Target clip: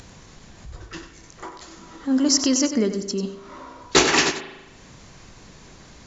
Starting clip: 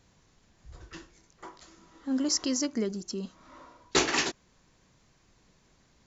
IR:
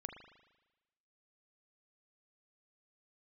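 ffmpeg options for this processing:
-filter_complex "[0:a]acompressor=mode=upward:threshold=-44dB:ratio=2.5,asplit=2[a][b];[1:a]atrim=start_sample=2205,adelay=94[c];[b][c]afir=irnorm=-1:irlink=0,volume=-5.5dB[d];[a][d]amix=inputs=2:normalize=0,volume=8.5dB" -ar 24000 -c:a aac -b:a 96k

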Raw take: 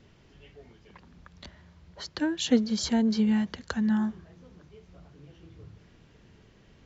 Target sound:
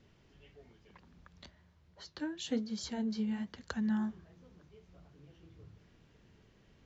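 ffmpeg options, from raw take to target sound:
-filter_complex "[0:a]asplit=3[a][b][c];[a]afade=t=out:st=1.45:d=0.02[d];[b]flanger=delay=8.4:depth=5.1:regen=-57:speed=1.1:shape=sinusoidal,afade=t=in:st=1.45:d=0.02,afade=t=out:st=3.56:d=0.02[e];[c]afade=t=in:st=3.56:d=0.02[f];[d][e][f]amix=inputs=3:normalize=0,volume=-7dB"

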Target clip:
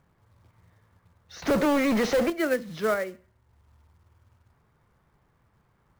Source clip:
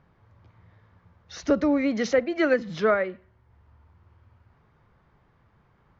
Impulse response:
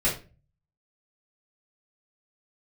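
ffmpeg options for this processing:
-filter_complex "[0:a]asettb=1/sr,asplit=3[a][b][c];[a]atrim=end=1.424[d];[b]atrim=start=1.42:end=2.3,asetpts=PTS-STARTPTS,afade=t=in:d=0.004:c=qsin,afade=t=out:st=0.876:d=0.004:c=qsin,asplit=2[e][f];[f]highpass=f=720:p=1,volume=34dB,asoftclip=type=tanh:threshold=-11.5dB[g];[e][g]amix=inputs=2:normalize=0,lowpass=f=1.1k:p=1,volume=-6dB[h];[c]atrim=start=2.296[i];[d][h]acrossfade=d=0.004:c1=hsin:c2=qsin[j];[j][i]acrossfade=d=0.004:c1=qsin:c2=hsin,acrusher=bits=4:mode=log:mix=0:aa=0.000001,asplit=2[k][l];[1:a]atrim=start_sample=2205,adelay=13[m];[l][m]afir=irnorm=-1:irlink=0,volume=-32dB[n];[k][n]amix=inputs=2:normalize=0,volume=-4dB"

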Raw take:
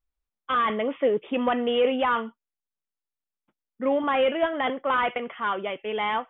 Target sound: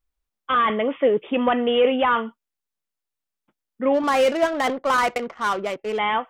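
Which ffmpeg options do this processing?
-filter_complex "[0:a]asplit=3[a][b][c];[a]afade=t=out:st=3.93:d=0.02[d];[b]adynamicsmooth=sensitivity=5:basefreq=560,afade=t=in:st=3.93:d=0.02,afade=t=out:st=5.97:d=0.02[e];[c]afade=t=in:st=5.97:d=0.02[f];[d][e][f]amix=inputs=3:normalize=0,volume=4dB"

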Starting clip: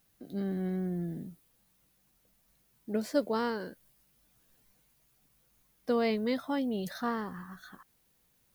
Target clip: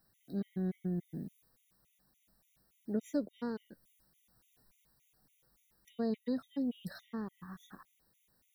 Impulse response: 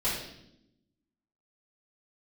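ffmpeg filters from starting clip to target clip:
-filter_complex "[0:a]acrossover=split=370[a][b];[b]acompressor=threshold=-51dB:ratio=2[c];[a][c]amix=inputs=2:normalize=0,afftfilt=real='re*gt(sin(2*PI*3.5*pts/sr)*(1-2*mod(floor(b*sr/1024/1900),2)),0)':imag='im*gt(sin(2*PI*3.5*pts/sr)*(1-2*mod(floor(b*sr/1024/1900),2)),0)':win_size=1024:overlap=0.75"

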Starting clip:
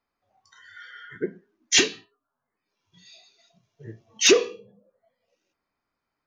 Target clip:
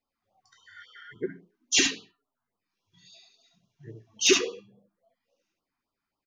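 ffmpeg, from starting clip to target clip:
-af "flanger=delay=3.6:depth=7.2:regen=56:speed=0.57:shape=sinusoidal,aecho=1:1:70:0.596,afftfilt=real='re*(1-between(b*sr/1024,450*pow(2000/450,0.5+0.5*sin(2*PI*3.6*pts/sr))/1.41,450*pow(2000/450,0.5+0.5*sin(2*PI*3.6*pts/sr))*1.41))':imag='im*(1-between(b*sr/1024,450*pow(2000/450,0.5+0.5*sin(2*PI*3.6*pts/sr))/1.41,450*pow(2000/450,0.5+0.5*sin(2*PI*3.6*pts/sr))*1.41))':win_size=1024:overlap=0.75"

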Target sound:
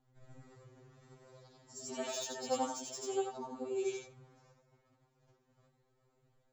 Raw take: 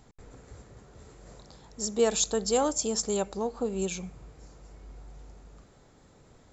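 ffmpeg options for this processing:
-filter_complex "[0:a]afftfilt=real='re':imag='-im':win_size=8192:overlap=0.75,agate=range=-10dB:threshold=-57dB:ratio=16:detection=peak,asplit=2[a][b];[b]adynamicsmooth=sensitivity=3:basefreq=5.3k,volume=-1dB[c];[a][c]amix=inputs=2:normalize=0,flanger=delay=1.7:depth=7.8:regen=-16:speed=1.3:shape=sinusoidal,acrossover=split=350|2500[d][e][f];[f]asoftclip=type=tanh:threshold=-31.5dB[g];[d][e][g]amix=inputs=3:normalize=0,afftfilt=real='re*2.45*eq(mod(b,6),0)':imag='im*2.45*eq(mod(b,6),0)':win_size=2048:overlap=0.75,volume=-2.5dB"

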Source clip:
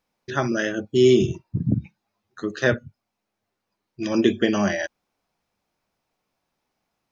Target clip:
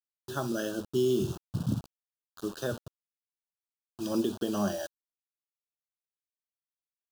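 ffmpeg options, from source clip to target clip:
-af "alimiter=limit=-11.5dB:level=0:latency=1:release=171,acrusher=bits=5:mix=0:aa=0.000001,asuperstop=centerf=2100:order=4:qfactor=1.4,volume=-7dB"

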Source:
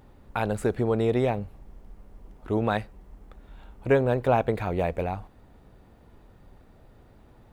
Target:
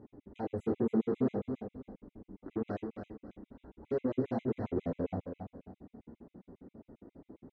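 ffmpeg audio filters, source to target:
-filter_complex "[0:a]asplit=2[a][b];[b]aeval=exprs='0.316*sin(PI/2*5.01*val(0)/0.316)':c=same,volume=-8dB[c];[a][c]amix=inputs=2:normalize=0,flanger=delay=9.2:depth=5.7:regen=-26:speed=0.44:shape=triangular,asoftclip=type=tanh:threshold=-22dB,bandpass=f=280:t=q:w=1.8:csg=0,asplit=2[d][e];[e]adelay=31,volume=-4dB[f];[d][f]amix=inputs=2:normalize=0,aecho=1:1:282|564|846|1128:0.447|0.134|0.0402|0.0121,afftfilt=real='re*gt(sin(2*PI*7.4*pts/sr)*(1-2*mod(floor(b*sr/1024/2000),2)),0)':imag='im*gt(sin(2*PI*7.4*pts/sr)*(1-2*mod(floor(b*sr/1024/2000),2)),0)':win_size=1024:overlap=0.75"

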